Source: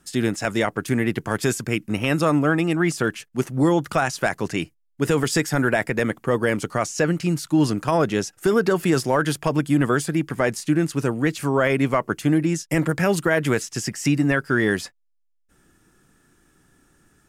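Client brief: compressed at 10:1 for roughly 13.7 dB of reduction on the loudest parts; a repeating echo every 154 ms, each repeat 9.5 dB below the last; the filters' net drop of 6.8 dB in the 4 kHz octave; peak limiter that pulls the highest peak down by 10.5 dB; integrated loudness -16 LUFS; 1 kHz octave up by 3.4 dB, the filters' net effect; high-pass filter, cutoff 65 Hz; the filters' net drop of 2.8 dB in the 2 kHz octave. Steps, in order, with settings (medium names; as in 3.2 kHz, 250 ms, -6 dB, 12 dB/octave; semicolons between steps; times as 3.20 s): high-pass 65 Hz; peaking EQ 1 kHz +6.5 dB; peaking EQ 2 kHz -5 dB; peaking EQ 4 kHz -8.5 dB; compression 10:1, threshold -28 dBFS; peak limiter -25 dBFS; feedback delay 154 ms, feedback 33%, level -9.5 dB; trim +20 dB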